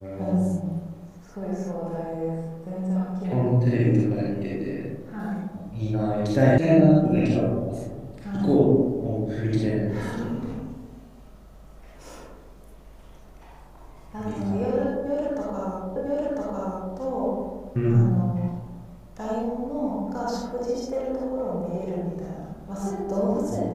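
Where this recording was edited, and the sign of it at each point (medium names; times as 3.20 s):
6.58 s: sound stops dead
15.96 s: repeat of the last 1 s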